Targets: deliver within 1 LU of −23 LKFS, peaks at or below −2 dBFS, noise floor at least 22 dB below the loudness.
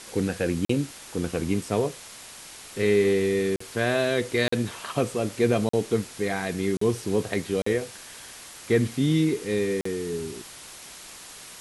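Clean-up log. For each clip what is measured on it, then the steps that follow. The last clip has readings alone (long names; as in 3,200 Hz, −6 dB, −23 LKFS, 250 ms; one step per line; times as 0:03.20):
number of dropouts 7; longest dropout 44 ms; background noise floor −44 dBFS; target noise floor −48 dBFS; integrated loudness −26.0 LKFS; sample peak −9.0 dBFS; target loudness −23.0 LKFS
→ repair the gap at 0:00.65/0:03.56/0:04.48/0:05.69/0:06.77/0:07.62/0:09.81, 44 ms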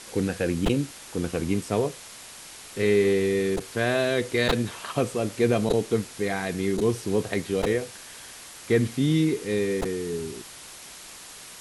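number of dropouts 0; background noise floor −44 dBFS; target noise floor −48 dBFS
→ broadband denoise 6 dB, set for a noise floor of −44 dBFS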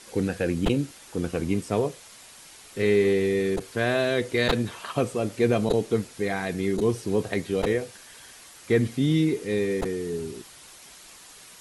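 background noise floor −48 dBFS; integrated loudness −26.0 LKFS; sample peak −9.0 dBFS; target loudness −23.0 LKFS
→ level +3 dB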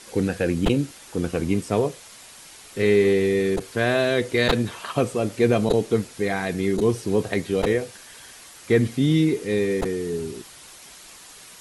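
integrated loudness −23.0 LKFS; sample peak −6.0 dBFS; background noise floor −45 dBFS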